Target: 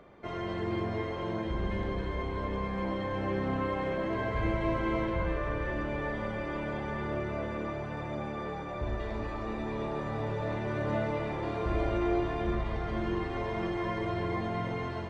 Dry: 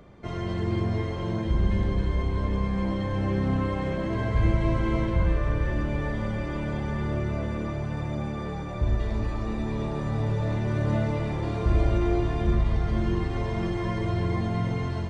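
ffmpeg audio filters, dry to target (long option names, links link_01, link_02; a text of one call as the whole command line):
ffmpeg -i in.wav -af "bass=frequency=250:gain=-11,treble=frequency=4000:gain=-10" out.wav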